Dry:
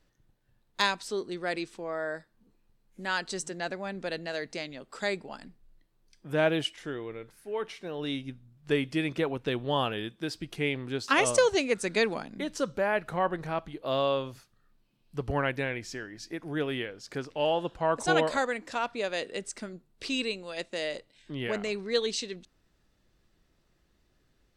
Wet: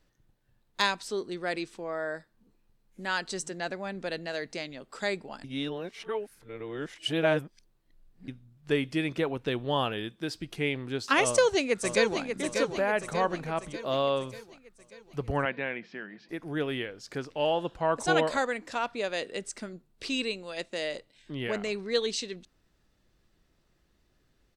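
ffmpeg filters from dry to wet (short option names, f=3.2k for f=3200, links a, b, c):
-filter_complex "[0:a]asplit=2[a][b];[b]afade=t=in:st=11.24:d=0.01,afade=t=out:st=12.22:d=0.01,aecho=0:1:590|1180|1770|2360|2950|3540|4130:0.473151|0.260233|0.143128|0.0787205|0.0432963|0.023813|0.0130971[c];[a][c]amix=inputs=2:normalize=0,asettb=1/sr,asplit=3[d][e][f];[d]atrim=end=15.454[g];[e]atrim=start=15.45:end=16.29,asetpts=PTS-STARTPTS,afade=t=in:d=0.004:c=qsin,afade=t=out:st=0.836:d=0.004:c=qsin,highpass=f=180:w=0.5412,highpass=f=180:w=1.3066,equalizer=f=190:t=q:w=4:g=9,equalizer=f=290:t=q:w=4:g=-6,equalizer=f=430:t=q:w=4:g=-4,lowpass=f=3.2k:w=0.5412,lowpass=f=3.2k:w=1.3066[h];[f]atrim=start=16.286[i];[g][h]acrossfade=d=0.004:c1=hsin:c2=qsin[j];[j][i]acrossfade=d=0.004:c1=qsin:c2=hsin,asplit=3[k][l][m];[k]atrim=end=5.442[n];[l]atrim=start=5.438:end=8.282,asetpts=PTS-STARTPTS,areverse[o];[m]atrim=start=8.278[p];[n][o]acrossfade=d=0.004:c1=hsin:c2=hsin[q];[q][p]acrossfade=d=0.004:c1=hsin:c2=hsin"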